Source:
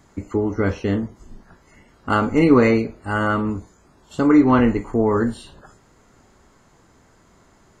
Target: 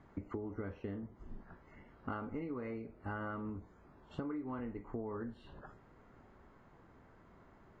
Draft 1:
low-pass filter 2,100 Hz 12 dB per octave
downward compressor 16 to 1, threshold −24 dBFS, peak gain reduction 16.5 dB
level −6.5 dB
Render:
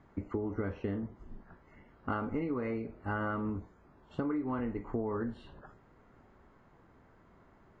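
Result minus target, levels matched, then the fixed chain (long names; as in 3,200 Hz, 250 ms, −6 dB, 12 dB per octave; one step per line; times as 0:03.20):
downward compressor: peak gain reduction −7 dB
low-pass filter 2,100 Hz 12 dB per octave
downward compressor 16 to 1, threshold −31.5 dBFS, peak gain reduction 23.5 dB
level −6.5 dB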